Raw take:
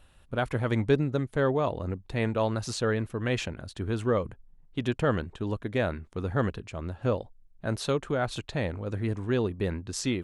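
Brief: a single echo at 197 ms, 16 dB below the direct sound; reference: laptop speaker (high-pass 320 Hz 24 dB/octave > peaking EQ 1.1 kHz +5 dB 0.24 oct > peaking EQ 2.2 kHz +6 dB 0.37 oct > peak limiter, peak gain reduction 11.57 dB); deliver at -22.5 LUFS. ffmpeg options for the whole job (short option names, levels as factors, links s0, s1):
-af "highpass=f=320:w=0.5412,highpass=f=320:w=1.3066,equalizer=f=1100:t=o:w=0.24:g=5,equalizer=f=2200:t=o:w=0.37:g=6,aecho=1:1:197:0.158,volume=5.01,alimiter=limit=0.299:level=0:latency=1"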